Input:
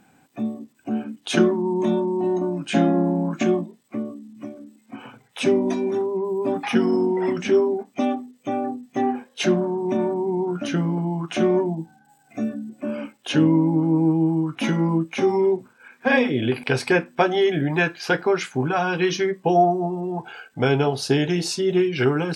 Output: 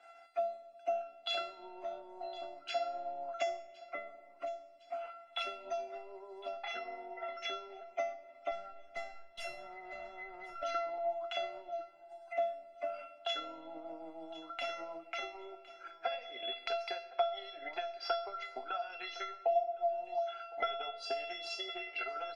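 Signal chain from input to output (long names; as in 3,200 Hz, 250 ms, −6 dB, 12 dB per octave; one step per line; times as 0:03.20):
high-pass filter 300 Hz 24 dB per octave
three-way crossover with the lows and the highs turned down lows −19 dB, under 410 Hz, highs −15 dB, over 4,500 Hz
downward compressor 4 to 1, threshold −31 dBFS, peak gain reduction 14 dB
transient designer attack +9 dB, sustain −7 dB
0:08.51–0:10.63: tube saturation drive 34 dB, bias 0.55
high-frequency loss of the air 61 metres
tuned comb filter 680 Hz, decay 0.42 s, mix 100%
repeating echo 1,060 ms, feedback 29%, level −22.5 dB
rectangular room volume 2,200 cubic metres, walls mixed, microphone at 0.37 metres
multiband upward and downward compressor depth 40%
level +16 dB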